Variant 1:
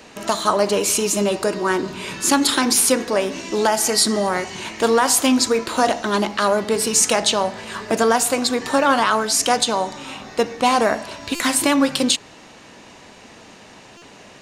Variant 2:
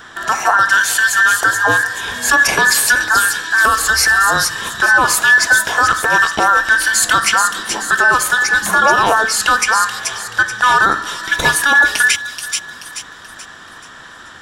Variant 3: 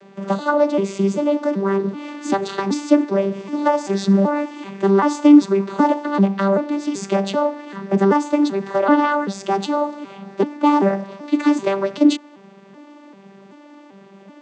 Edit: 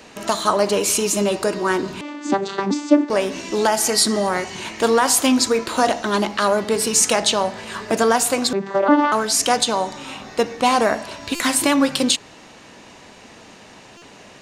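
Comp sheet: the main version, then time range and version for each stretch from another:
1
2.01–3.1 from 3
8.53–9.12 from 3
not used: 2

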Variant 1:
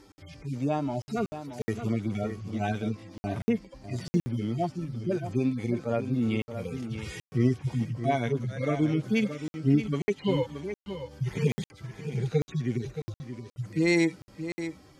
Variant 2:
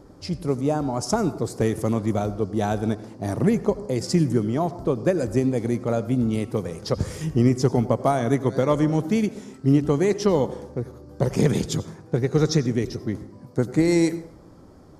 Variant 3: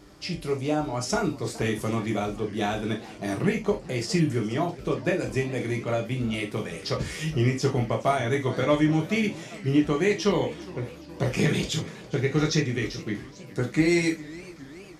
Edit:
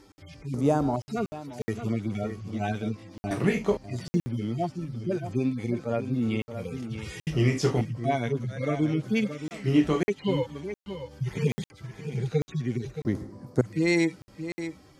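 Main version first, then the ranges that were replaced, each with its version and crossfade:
1
0.54–0.96 from 2
3.31–3.77 from 3
7.27–7.81 from 3
9.51–10.03 from 3
13.05–13.61 from 2

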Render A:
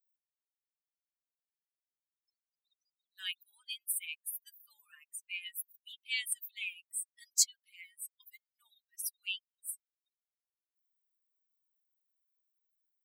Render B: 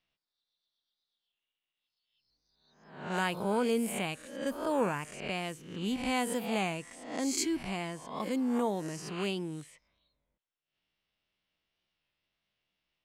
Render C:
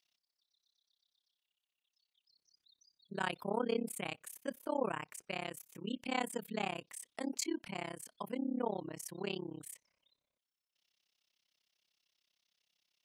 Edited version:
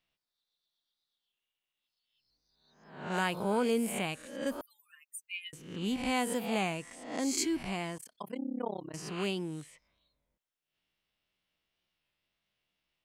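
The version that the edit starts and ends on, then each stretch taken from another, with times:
B
4.61–5.53 from A
7.98–8.94 from C

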